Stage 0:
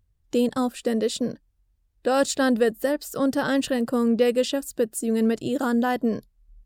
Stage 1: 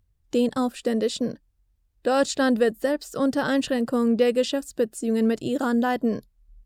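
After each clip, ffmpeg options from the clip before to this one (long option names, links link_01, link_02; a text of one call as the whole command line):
ffmpeg -i in.wav -filter_complex "[0:a]acrossover=split=8300[link_01][link_02];[link_02]acompressor=threshold=-50dB:ratio=4:attack=1:release=60[link_03];[link_01][link_03]amix=inputs=2:normalize=0" out.wav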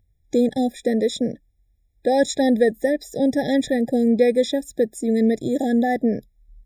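ffmpeg -i in.wav -af "afftfilt=real='re*eq(mod(floor(b*sr/1024/820),2),0)':imag='im*eq(mod(floor(b*sr/1024/820),2),0)':win_size=1024:overlap=0.75,volume=3.5dB" out.wav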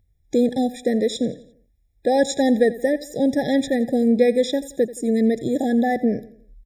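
ffmpeg -i in.wav -af "aecho=1:1:86|172|258|344:0.133|0.0587|0.0258|0.0114" out.wav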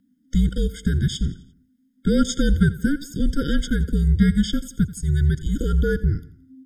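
ffmpeg -i in.wav -af "afreqshift=-300" out.wav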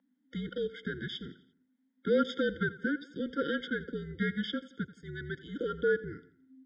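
ffmpeg -i in.wav -af "highpass=480,equalizer=frequency=610:width_type=q:width=4:gain=4,equalizer=frequency=880:width_type=q:width=4:gain=6,equalizer=frequency=1500:width_type=q:width=4:gain=-3,equalizer=frequency=2700:width_type=q:width=4:gain=-7,lowpass=frequency=3000:width=0.5412,lowpass=frequency=3000:width=1.3066" out.wav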